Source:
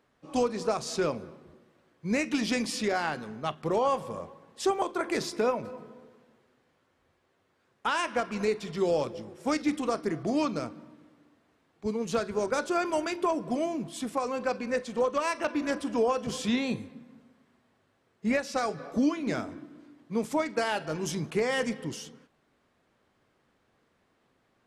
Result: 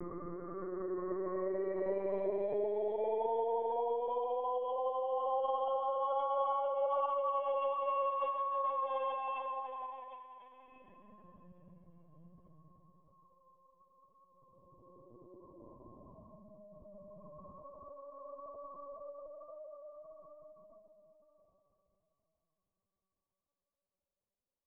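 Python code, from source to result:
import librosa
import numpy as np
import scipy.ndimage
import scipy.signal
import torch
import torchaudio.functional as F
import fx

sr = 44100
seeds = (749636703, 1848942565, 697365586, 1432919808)

y = scipy.ndimage.median_filter(x, 9, mode='constant')
y = fx.noise_reduce_blind(y, sr, reduce_db=28)
y = fx.hum_notches(y, sr, base_hz=50, count=6)
y = fx.dereverb_blind(y, sr, rt60_s=0.7)
y = fx.highpass(y, sr, hz=230.0, slope=6)
y = fx.wow_flutter(y, sr, seeds[0], rate_hz=2.1, depth_cents=51.0)
y = fx.paulstretch(y, sr, seeds[1], factor=37.0, window_s=0.05, from_s=3.68)
y = fx.lpc_vocoder(y, sr, seeds[2], excitation='pitch_kept', order=16)
y = fx.attack_slew(y, sr, db_per_s=210.0)
y = F.gain(torch.from_numpy(y), -8.0).numpy()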